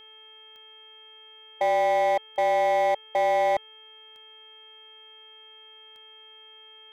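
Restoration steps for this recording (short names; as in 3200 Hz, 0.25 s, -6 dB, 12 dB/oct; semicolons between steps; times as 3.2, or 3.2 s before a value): clip repair -19.5 dBFS; de-click; de-hum 436.3 Hz, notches 6; notch 3200 Hz, Q 30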